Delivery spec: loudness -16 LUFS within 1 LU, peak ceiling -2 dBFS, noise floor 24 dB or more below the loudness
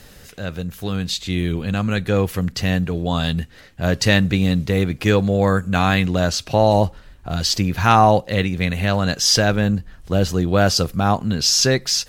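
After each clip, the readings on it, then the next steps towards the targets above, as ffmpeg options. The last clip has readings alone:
loudness -19.0 LUFS; peak -1.5 dBFS; loudness target -16.0 LUFS
-> -af "volume=3dB,alimiter=limit=-2dB:level=0:latency=1"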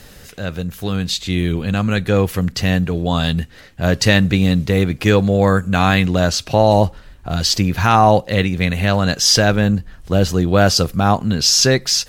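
loudness -16.0 LUFS; peak -2.0 dBFS; noise floor -42 dBFS

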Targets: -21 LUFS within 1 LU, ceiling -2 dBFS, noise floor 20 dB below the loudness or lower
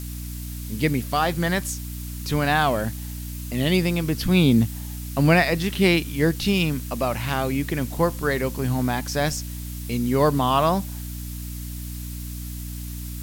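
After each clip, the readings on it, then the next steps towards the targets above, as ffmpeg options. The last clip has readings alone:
hum 60 Hz; harmonics up to 300 Hz; hum level -30 dBFS; noise floor -33 dBFS; noise floor target -43 dBFS; loudness -23.0 LUFS; peak -4.5 dBFS; loudness target -21.0 LUFS
-> -af "bandreject=f=60:t=h:w=6,bandreject=f=120:t=h:w=6,bandreject=f=180:t=h:w=6,bandreject=f=240:t=h:w=6,bandreject=f=300:t=h:w=6"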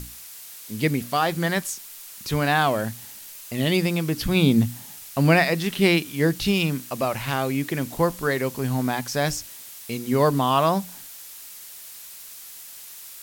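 hum none; noise floor -42 dBFS; noise floor target -43 dBFS
-> -af "afftdn=nr=6:nf=-42"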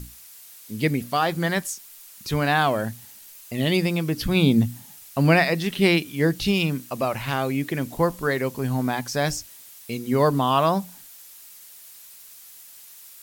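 noise floor -46 dBFS; loudness -23.0 LUFS; peak -5.0 dBFS; loudness target -21.0 LUFS
-> -af "volume=2dB"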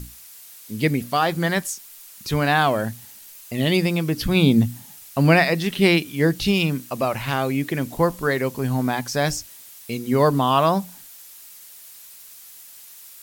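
loudness -21.0 LUFS; peak -3.0 dBFS; noise floor -44 dBFS

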